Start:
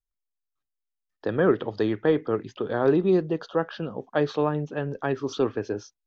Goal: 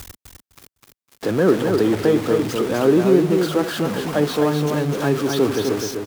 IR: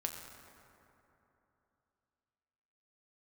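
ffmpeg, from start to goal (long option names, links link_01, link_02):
-af "aeval=exprs='val(0)+0.5*0.0562*sgn(val(0))':channel_layout=same,highpass=59,equalizer=frequency=250:width=0.97:gain=5.5,aecho=1:1:254|508|762:0.596|0.125|0.0263"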